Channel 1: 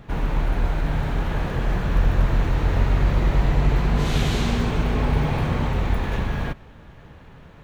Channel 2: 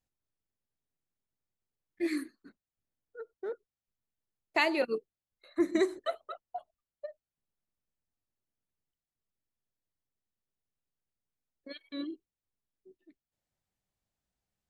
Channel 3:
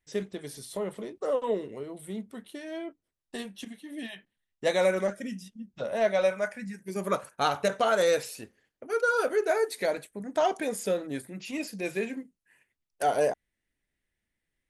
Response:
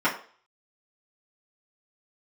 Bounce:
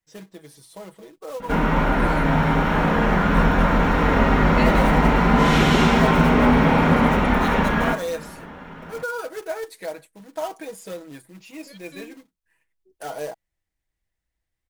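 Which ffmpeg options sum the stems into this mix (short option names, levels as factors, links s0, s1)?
-filter_complex "[0:a]equalizer=f=310:w=7.2:g=-5,adelay=1400,volume=1,asplit=2[s0][s1];[s1]volume=0.501[s2];[1:a]asubboost=boost=6.5:cutoff=71,volume=0.841[s3];[2:a]acrusher=bits=3:mode=log:mix=0:aa=0.000001,equalizer=f=950:t=o:w=0.77:g=4.5,aecho=1:1:6.2:0.65,volume=0.422[s4];[3:a]atrim=start_sample=2205[s5];[s2][s5]afir=irnorm=-1:irlink=0[s6];[s0][s3][s4][s6]amix=inputs=4:normalize=0"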